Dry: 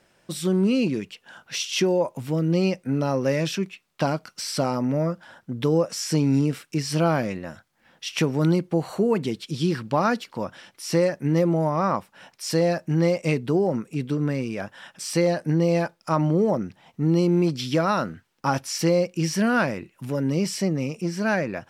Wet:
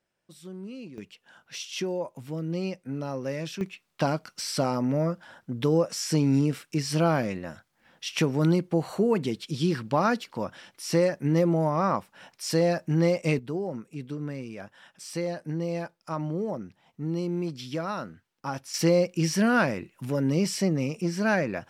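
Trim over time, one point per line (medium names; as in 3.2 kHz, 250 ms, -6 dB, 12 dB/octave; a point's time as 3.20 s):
-19 dB
from 0.98 s -9 dB
from 3.61 s -2 dB
from 13.39 s -9.5 dB
from 18.74 s -1 dB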